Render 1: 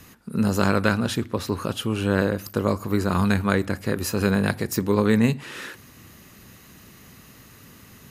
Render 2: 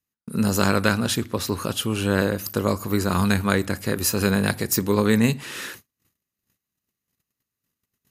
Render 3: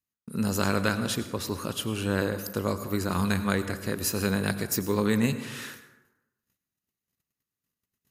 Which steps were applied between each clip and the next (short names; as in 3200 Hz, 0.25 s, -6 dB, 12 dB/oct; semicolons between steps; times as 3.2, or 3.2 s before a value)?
gate -42 dBFS, range -41 dB; high shelf 3800 Hz +9 dB
plate-style reverb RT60 1 s, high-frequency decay 0.5×, pre-delay 80 ms, DRR 11.5 dB; gain -6 dB